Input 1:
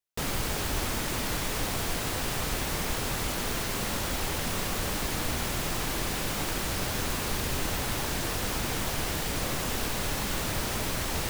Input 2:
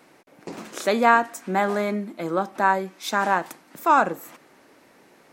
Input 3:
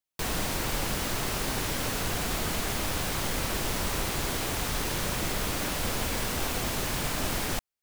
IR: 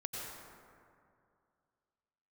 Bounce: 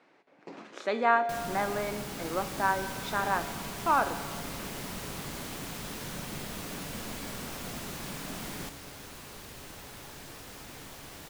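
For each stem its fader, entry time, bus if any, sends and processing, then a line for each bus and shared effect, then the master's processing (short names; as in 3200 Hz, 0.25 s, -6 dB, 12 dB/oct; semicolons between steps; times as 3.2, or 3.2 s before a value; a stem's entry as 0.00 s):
-5.0 dB, 2.05 s, no send, dry
+1.5 dB, 0.00 s, send -14.5 dB, LPF 3900 Hz 12 dB/oct; low shelf 170 Hz -9 dB
-0.5 dB, 1.10 s, no send, bell 190 Hz +8 dB 0.92 oct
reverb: on, RT60 2.4 s, pre-delay 82 ms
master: low shelf 70 Hz -7.5 dB; resonator 140 Hz, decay 1.7 s, mix 70%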